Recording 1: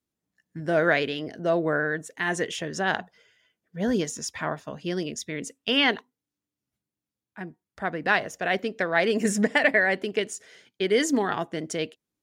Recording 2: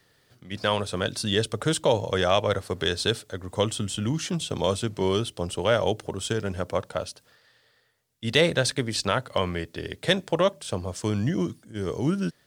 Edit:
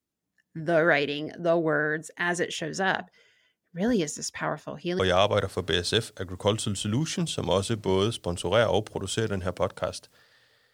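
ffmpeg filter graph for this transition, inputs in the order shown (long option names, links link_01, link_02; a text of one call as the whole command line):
ffmpeg -i cue0.wav -i cue1.wav -filter_complex "[0:a]apad=whole_dur=10.73,atrim=end=10.73,atrim=end=4.992[link_01];[1:a]atrim=start=2.118:end=7.86[link_02];[link_01][link_02]acrossfade=duration=0.004:curve1=hsin:curve2=hsin" out.wav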